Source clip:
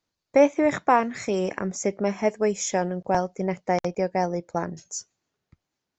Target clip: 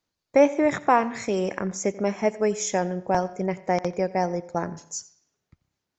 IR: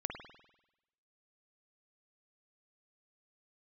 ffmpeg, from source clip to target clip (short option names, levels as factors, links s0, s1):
-filter_complex "[0:a]asplit=2[s0][s1];[1:a]atrim=start_sample=2205,asetrate=70560,aresample=44100,adelay=88[s2];[s1][s2]afir=irnorm=-1:irlink=0,volume=0.2[s3];[s0][s3]amix=inputs=2:normalize=0"